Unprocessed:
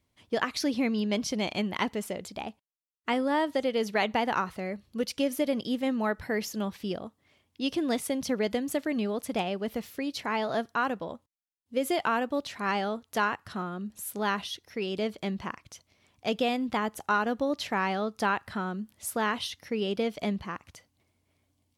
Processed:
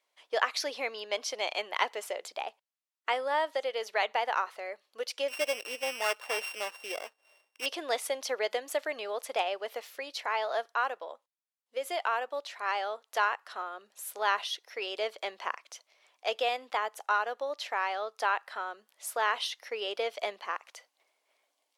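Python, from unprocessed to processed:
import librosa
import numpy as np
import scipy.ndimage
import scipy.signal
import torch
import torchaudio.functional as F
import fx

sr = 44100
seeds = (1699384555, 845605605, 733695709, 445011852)

y = fx.sample_sort(x, sr, block=16, at=(5.28, 7.66))
y = scipy.signal.sosfilt(scipy.signal.cheby2(4, 60, 150.0, 'highpass', fs=sr, output='sos'), y)
y = fx.high_shelf(y, sr, hz=8500.0, db=-7.0)
y = fx.rider(y, sr, range_db=4, speed_s=2.0)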